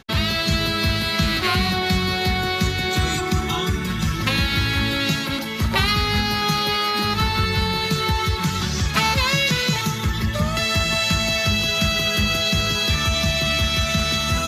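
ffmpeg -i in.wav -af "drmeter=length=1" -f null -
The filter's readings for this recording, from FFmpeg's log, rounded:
Channel 1: DR: 12.2
Overall DR: 12.2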